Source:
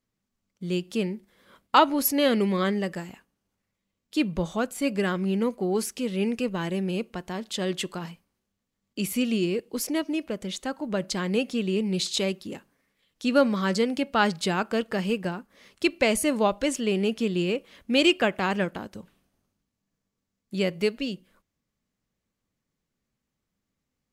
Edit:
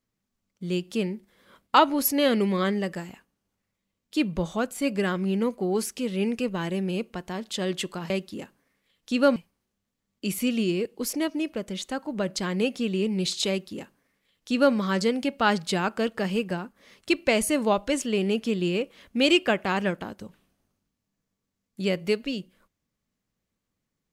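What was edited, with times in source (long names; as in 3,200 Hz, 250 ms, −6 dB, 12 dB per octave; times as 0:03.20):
0:12.23–0:13.49: duplicate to 0:08.10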